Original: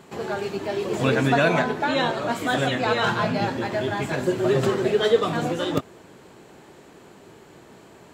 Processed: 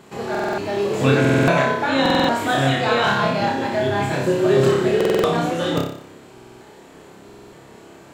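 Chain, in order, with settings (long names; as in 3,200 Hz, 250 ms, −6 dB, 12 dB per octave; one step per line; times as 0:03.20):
flutter between parallel walls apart 5.1 metres, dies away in 0.6 s
buffer that repeats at 0:00.30/0:01.20/0:02.01/0:04.96/0:06.33/0:07.25, samples 2,048, times 5
level +1 dB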